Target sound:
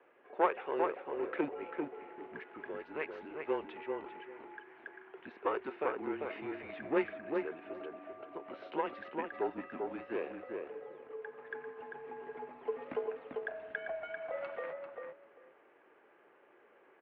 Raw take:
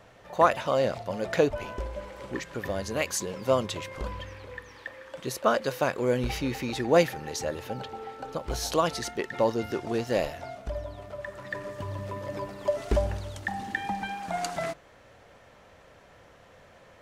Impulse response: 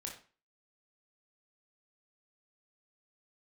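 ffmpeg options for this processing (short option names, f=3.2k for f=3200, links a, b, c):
-filter_complex "[0:a]aeval=exprs='0.447*(cos(1*acos(clip(val(0)/0.447,-1,1)))-cos(1*PI/2))+0.0316*(cos(3*acos(clip(val(0)/0.447,-1,1)))-cos(3*PI/2))+0.0501*(cos(4*acos(clip(val(0)/0.447,-1,1)))-cos(4*PI/2))':c=same,asplit=2[a][b];[b]adelay=394,lowpass=f=1.9k:p=1,volume=-3.5dB,asplit=2[c][d];[d]adelay=394,lowpass=f=1.9k:p=1,volume=0.18,asplit=2[e][f];[f]adelay=394,lowpass=f=1.9k:p=1,volume=0.18[g];[a][c][e][g]amix=inputs=4:normalize=0,highpass=f=470:t=q:w=0.5412,highpass=f=470:t=q:w=1.307,lowpass=f=2.8k:t=q:w=0.5176,lowpass=f=2.8k:t=q:w=0.7071,lowpass=f=2.8k:t=q:w=1.932,afreqshift=-150,volume=-7dB"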